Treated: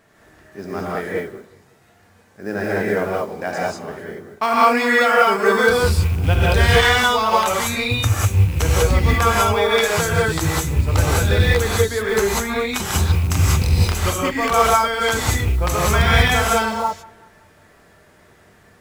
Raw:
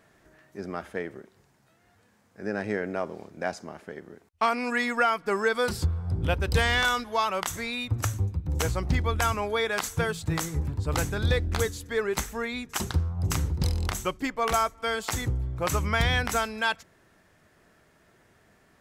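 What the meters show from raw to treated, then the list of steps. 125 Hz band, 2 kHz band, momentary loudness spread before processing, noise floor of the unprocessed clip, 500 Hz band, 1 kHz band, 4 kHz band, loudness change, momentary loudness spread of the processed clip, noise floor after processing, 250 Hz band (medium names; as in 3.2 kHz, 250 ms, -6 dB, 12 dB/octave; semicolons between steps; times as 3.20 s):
+10.5 dB, +9.5 dB, 10 LU, -63 dBFS, +11.0 dB, +10.5 dB, +10.0 dB, +10.5 dB, 12 LU, -52 dBFS, +8.5 dB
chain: rattle on loud lows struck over -24 dBFS, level -29 dBFS; spectral replace 16.50–16.78 s, 1.4–9.5 kHz both; modulation noise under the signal 27 dB; on a send: bucket-brigade echo 188 ms, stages 4096, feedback 46%, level -23.5 dB; on the sum: gated-style reverb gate 220 ms rising, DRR -5.5 dB; trim +3.5 dB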